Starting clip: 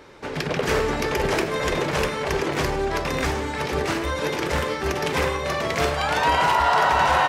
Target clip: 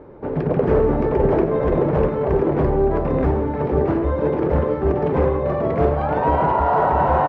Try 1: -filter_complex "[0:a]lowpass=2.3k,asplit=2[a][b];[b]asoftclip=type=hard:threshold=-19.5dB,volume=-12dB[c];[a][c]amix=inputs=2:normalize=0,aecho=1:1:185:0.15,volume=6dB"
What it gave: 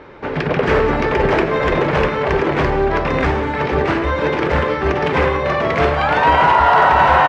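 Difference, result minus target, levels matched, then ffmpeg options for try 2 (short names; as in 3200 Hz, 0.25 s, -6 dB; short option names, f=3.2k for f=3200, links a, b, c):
2000 Hz band +12.0 dB
-filter_complex "[0:a]lowpass=640,asplit=2[a][b];[b]asoftclip=type=hard:threshold=-19.5dB,volume=-12dB[c];[a][c]amix=inputs=2:normalize=0,aecho=1:1:185:0.15,volume=6dB"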